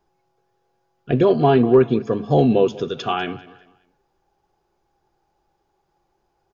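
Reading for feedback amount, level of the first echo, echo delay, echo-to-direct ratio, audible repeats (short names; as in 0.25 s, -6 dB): 33%, -19.0 dB, 0.196 s, -18.5 dB, 2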